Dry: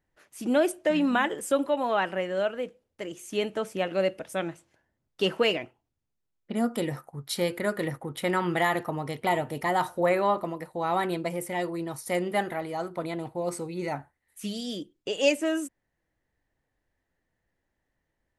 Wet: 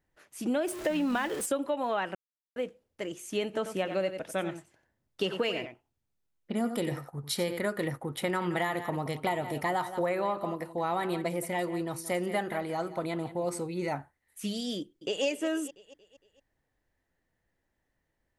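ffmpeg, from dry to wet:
-filter_complex "[0:a]asettb=1/sr,asplit=3[s0][s1][s2];[s0]atrim=end=0.674[s3];[s1]atrim=start=0.67:end=1.46,asetpts=PTS-STARTPTS,afade=t=in:d=0.004:c=qsin,afade=t=out:st=0.786:d=0.004:c=qsin,aeval=exprs='val(0)+0.5*0.02*sgn(val(0))':c=same[s4];[s2]atrim=start=1.456[s5];[s3][s4]acrossfade=d=0.004:c1=hsin:c2=qsin[s6];[s6][s5]acrossfade=d=0.004:c1=qsin:c2=hsin,asplit=3[s7][s8][s9];[s7]afade=t=out:st=3.53:d=0.02[s10];[s8]aecho=1:1:91:0.282,afade=t=in:st=3.53:d=0.02,afade=t=out:st=7.62:d=0.02[s11];[s9]afade=t=in:st=7.62:d=0.02[s12];[s10][s11][s12]amix=inputs=3:normalize=0,asplit=3[s13][s14][s15];[s13]afade=t=out:st=8.12:d=0.02[s16];[s14]aecho=1:1:175:0.188,afade=t=in:st=8.12:d=0.02,afade=t=out:st=13.58:d=0.02[s17];[s15]afade=t=in:st=13.58:d=0.02[s18];[s16][s17][s18]amix=inputs=3:normalize=0,asplit=2[s19][s20];[s20]afade=t=in:st=14.78:d=0.01,afade=t=out:st=15.24:d=0.01,aecho=0:1:230|460|690|920|1150:0.223872|0.111936|0.055968|0.027984|0.013992[s21];[s19][s21]amix=inputs=2:normalize=0,asplit=3[s22][s23][s24];[s22]atrim=end=2.15,asetpts=PTS-STARTPTS,afade=t=out:st=2.146:d=0.004:c=hsin[s25];[s23]atrim=start=2.15:end=2.56,asetpts=PTS-STARTPTS,volume=0[s26];[s24]atrim=start=2.56,asetpts=PTS-STARTPTS,afade=t=in:d=0.004:c=hsin[s27];[s25][s26][s27]concat=n=3:v=0:a=1,acompressor=threshold=0.0501:ratio=6"

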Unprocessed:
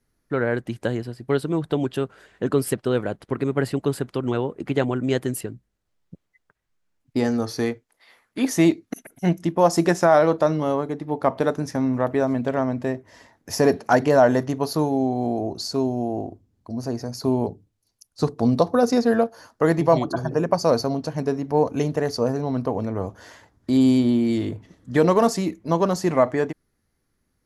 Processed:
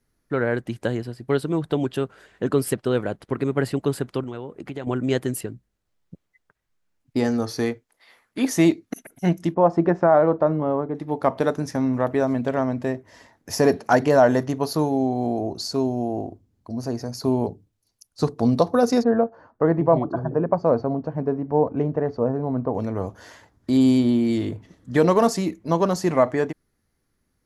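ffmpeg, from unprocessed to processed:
-filter_complex "[0:a]asettb=1/sr,asplit=3[s0][s1][s2];[s0]atrim=end=4.234[s3];[s1]atrim=start=4.23:end=4.87,asetpts=PTS-STARTPTS,afade=t=in:d=0.004:c=qsin,afade=t=out:st=0.636:d=0.004:c=qsin,acompressor=threshold=0.0224:ratio=2.5:attack=3.2:release=140:knee=1:detection=peak[s4];[s2]atrim=start=4.866[s5];[s3][s4]acrossfade=d=0.004:c1=hsin:c2=qsin[s6];[s6][s5]acrossfade=d=0.004:c1=qsin:c2=hsin,asettb=1/sr,asplit=3[s7][s8][s9];[s7]atrim=end=9.544[s10];[s8]atrim=start=9.54:end=10.95,asetpts=PTS-STARTPTS,afade=t=in:d=0.004:c=qsin,afade=t=out:st=1.406:d=0.004:c=qsin,lowpass=1300[s11];[s9]atrim=start=10.946[s12];[s10][s11]acrossfade=d=0.004:c1=hsin:c2=qsin[s13];[s13][s12]acrossfade=d=0.004:c1=qsin:c2=hsin,asplit=3[s14][s15][s16];[s14]afade=t=out:st=19.02:d=0.02[s17];[s15]lowpass=1200,afade=t=in:st=19.02:d=0.02,afade=t=out:st=22.73:d=0.02[s18];[s16]afade=t=in:st=22.73:d=0.02[s19];[s17][s18][s19]amix=inputs=3:normalize=0"

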